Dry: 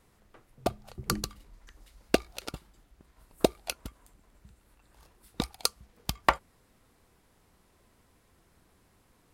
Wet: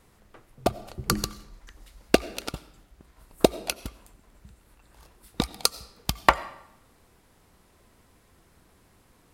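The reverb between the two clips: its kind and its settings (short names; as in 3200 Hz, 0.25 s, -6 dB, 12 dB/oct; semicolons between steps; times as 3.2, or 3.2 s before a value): digital reverb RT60 0.79 s, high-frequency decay 0.85×, pre-delay 50 ms, DRR 17.5 dB; gain +5 dB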